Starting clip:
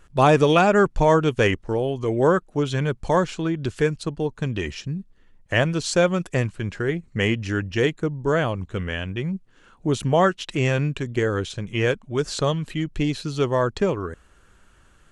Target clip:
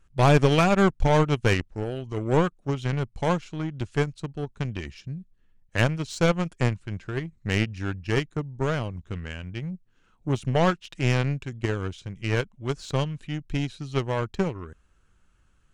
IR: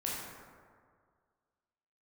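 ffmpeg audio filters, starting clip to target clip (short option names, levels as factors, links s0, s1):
-filter_complex "[0:a]aeval=exprs='0.596*(cos(1*acos(clip(val(0)/0.596,-1,1)))-cos(1*PI/2))+0.0596*(cos(7*acos(clip(val(0)/0.596,-1,1)))-cos(7*PI/2))':c=same,highshelf=f=2700:g=7,asplit=2[s0][s1];[s1]aeval=exprs='clip(val(0),-1,0.0794)':c=same,volume=0.668[s2];[s0][s2]amix=inputs=2:normalize=0,asetrate=42336,aresample=44100,bass=f=250:g=8,treble=f=4000:g=-4,volume=0.376"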